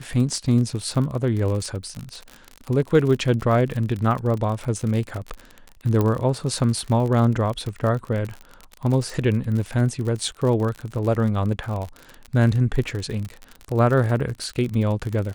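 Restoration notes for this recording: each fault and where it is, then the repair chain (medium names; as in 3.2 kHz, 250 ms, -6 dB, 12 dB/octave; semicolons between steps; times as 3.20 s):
crackle 54 per s -27 dBFS
6.01 s: pop -10 dBFS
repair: de-click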